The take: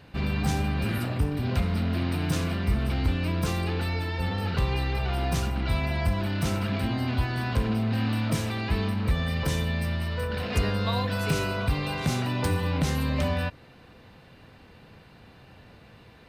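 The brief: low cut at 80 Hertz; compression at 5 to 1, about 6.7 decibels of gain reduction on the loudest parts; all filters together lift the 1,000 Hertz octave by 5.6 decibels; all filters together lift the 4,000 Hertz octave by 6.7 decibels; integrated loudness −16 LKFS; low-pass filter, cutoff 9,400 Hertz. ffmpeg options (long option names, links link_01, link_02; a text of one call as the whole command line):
ffmpeg -i in.wav -af "highpass=80,lowpass=9400,equalizer=frequency=1000:width_type=o:gain=6.5,equalizer=frequency=4000:width_type=o:gain=8,acompressor=threshold=-28dB:ratio=5,volume=15.5dB" out.wav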